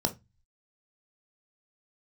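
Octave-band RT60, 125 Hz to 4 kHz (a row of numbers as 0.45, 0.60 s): 0.60, 0.30, 0.20, 0.20, 0.20, 0.20 s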